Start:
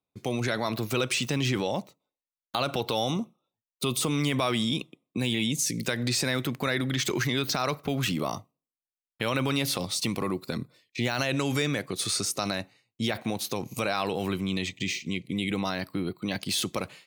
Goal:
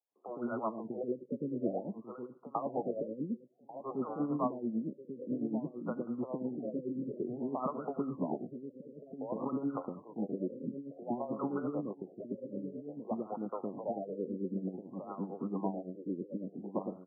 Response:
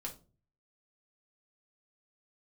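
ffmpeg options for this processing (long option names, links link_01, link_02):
-filter_complex "[0:a]highpass=frequency=200:width=0.5412,highpass=frequency=200:width=1.3066,asplit=2[link_01][link_02];[link_02]adelay=1143,lowpass=frequency=1600:poles=1,volume=-8dB,asplit=2[link_03][link_04];[link_04]adelay=1143,lowpass=frequency=1600:poles=1,volume=0.27,asplit=2[link_05][link_06];[link_06]adelay=1143,lowpass=frequency=1600:poles=1,volume=0.27[link_07];[link_03][link_05][link_07]amix=inputs=3:normalize=0[link_08];[link_01][link_08]amix=inputs=2:normalize=0,acrossover=split=1600[link_09][link_10];[link_09]aeval=exprs='val(0)*(1-0.7/2+0.7/2*cos(2*PI*9*n/s))':channel_layout=same[link_11];[link_10]aeval=exprs='val(0)*(1-0.7/2-0.7/2*cos(2*PI*9*n/s))':channel_layout=same[link_12];[link_11][link_12]amix=inputs=2:normalize=0,acrossover=split=460|1900[link_13][link_14][link_15];[link_13]adelay=110[link_16];[link_15]adelay=450[link_17];[link_16][link_14][link_17]amix=inputs=3:normalize=0,afftfilt=real='re*lt(b*sr/1024,560*pow(1500/560,0.5+0.5*sin(2*PI*0.54*pts/sr)))':imag='im*lt(b*sr/1024,560*pow(1500/560,0.5+0.5*sin(2*PI*0.54*pts/sr)))':win_size=1024:overlap=0.75,volume=-1dB"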